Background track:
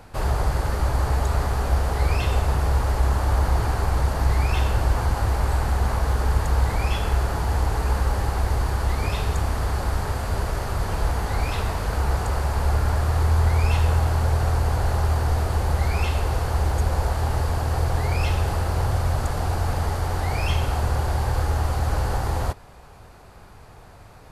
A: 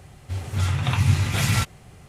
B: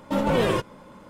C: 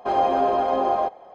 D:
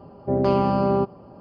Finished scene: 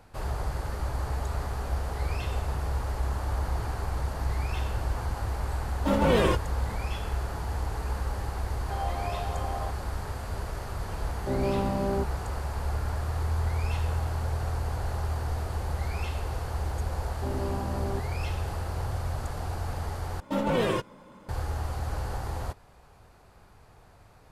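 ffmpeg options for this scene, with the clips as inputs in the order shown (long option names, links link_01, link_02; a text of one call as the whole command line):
ffmpeg -i bed.wav -i cue0.wav -i cue1.wav -i cue2.wav -i cue3.wav -filter_complex "[2:a]asplit=2[link_01][link_02];[4:a]asplit=2[link_03][link_04];[0:a]volume=-9dB[link_05];[3:a]highpass=frequency=1200:poles=1[link_06];[link_03]equalizer=frequency=1500:width=1.6:gain=-11.5[link_07];[link_04]equalizer=frequency=300:width=1.6:gain=6.5[link_08];[link_05]asplit=2[link_09][link_10];[link_09]atrim=end=20.204[link_11];[link_02]atrim=end=1.09,asetpts=PTS-STARTPTS,volume=-4dB[link_12];[link_10]atrim=start=21.286[link_13];[link_01]atrim=end=1.09,asetpts=PTS-STARTPTS,volume=-1dB,afade=type=in:duration=0.004:curve=hsin,afade=type=out:start_time=1.086:duration=0.004:curve=hsin,adelay=5750[link_14];[link_06]atrim=end=1.34,asetpts=PTS-STARTPTS,volume=-9dB,afade=type=in:duration=0.004:curve=hsin,afade=type=out:start_time=1.336:duration=0.004:curve=hsin,adelay=8630[link_15];[link_07]atrim=end=1.4,asetpts=PTS-STARTPTS,volume=-7.5dB,afade=type=in:duration=0.004:curve=hsin,afade=type=out:start_time=1.396:duration=0.004:curve=hsin,adelay=10990[link_16];[link_08]atrim=end=1.4,asetpts=PTS-STARTPTS,volume=-17dB,afade=type=in:duration=0.004:curve=hsin,afade=type=out:start_time=1.396:duration=0.004:curve=hsin,adelay=16950[link_17];[link_11][link_12]acrossfade=duration=0.004:curve1=hsin:curve2=hsin[link_18];[link_18][link_13]acrossfade=duration=0.004:curve1=hsin:curve2=hsin[link_19];[link_19][link_14][link_15][link_16][link_17]amix=inputs=5:normalize=0" out.wav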